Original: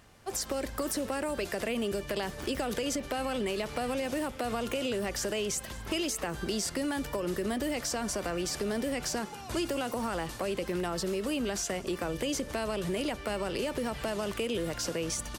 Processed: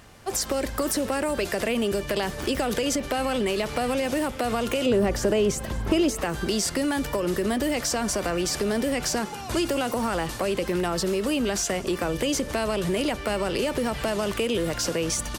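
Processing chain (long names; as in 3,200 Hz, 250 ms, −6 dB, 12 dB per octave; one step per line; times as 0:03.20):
in parallel at −11 dB: soft clipping −39.5 dBFS, distortion −6 dB
0:04.86–0:06.21: on the sum: tilt shelving filter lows +6 dB, about 1,200 Hz
level +6 dB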